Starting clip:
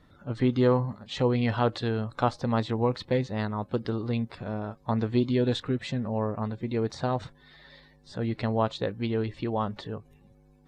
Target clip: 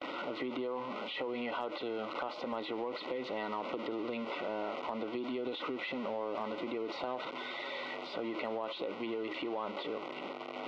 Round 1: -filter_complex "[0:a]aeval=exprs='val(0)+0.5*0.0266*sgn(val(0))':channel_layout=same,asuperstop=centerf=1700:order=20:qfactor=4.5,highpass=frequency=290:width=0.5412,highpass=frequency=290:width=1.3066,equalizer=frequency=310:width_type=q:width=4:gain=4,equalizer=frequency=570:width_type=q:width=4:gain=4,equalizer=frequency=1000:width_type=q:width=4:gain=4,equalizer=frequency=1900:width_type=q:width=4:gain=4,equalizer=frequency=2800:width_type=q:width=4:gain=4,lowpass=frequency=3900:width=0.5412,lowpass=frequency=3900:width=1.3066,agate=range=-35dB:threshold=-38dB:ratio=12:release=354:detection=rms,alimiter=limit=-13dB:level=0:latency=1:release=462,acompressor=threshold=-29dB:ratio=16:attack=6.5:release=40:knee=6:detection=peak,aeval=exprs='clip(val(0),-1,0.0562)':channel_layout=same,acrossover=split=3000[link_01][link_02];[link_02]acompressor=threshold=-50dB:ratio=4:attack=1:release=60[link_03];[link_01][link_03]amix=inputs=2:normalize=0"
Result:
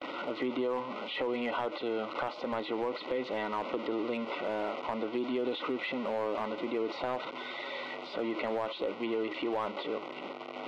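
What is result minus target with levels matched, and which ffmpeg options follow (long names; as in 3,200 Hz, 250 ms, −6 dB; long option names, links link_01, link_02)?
downward compressor: peak gain reduction −5.5 dB
-filter_complex "[0:a]aeval=exprs='val(0)+0.5*0.0266*sgn(val(0))':channel_layout=same,asuperstop=centerf=1700:order=20:qfactor=4.5,highpass=frequency=290:width=0.5412,highpass=frequency=290:width=1.3066,equalizer=frequency=310:width_type=q:width=4:gain=4,equalizer=frequency=570:width_type=q:width=4:gain=4,equalizer=frequency=1000:width_type=q:width=4:gain=4,equalizer=frequency=1900:width_type=q:width=4:gain=4,equalizer=frequency=2800:width_type=q:width=4:gain=4,lowpass=frequency=3900:width=0.5412,lowpass=frequency=3900:width=1.3066,agate=range=-35dB:threshold=-38dB:ratio=12:release=354:detection=rms,alimiter=limit=-13dB:level=0:latency=1:release=462,acompressor=threshold=-35dB:ratio=16:attack=6.5:release=40:knee=6:detection=peak,aeval=exprs='clip(val(0),-1,0.0562)':channel_layout=same,acrossover=split=3000[link_01][link_02];[link_02]acompressor=threshold=-50dB:ratio=4:attack=1:release=60[link_03];[link_01][link_03]amix=inputs=2:normalize=0"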